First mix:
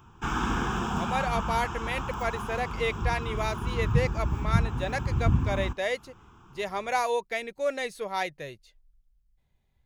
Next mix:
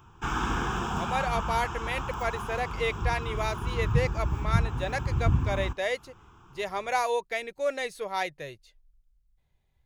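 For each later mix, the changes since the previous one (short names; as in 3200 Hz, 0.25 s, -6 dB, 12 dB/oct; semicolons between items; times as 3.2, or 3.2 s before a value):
master: add bell 220 Hz -5 dB 0.62 oct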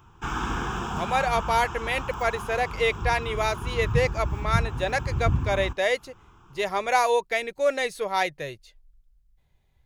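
speech +5.5 dB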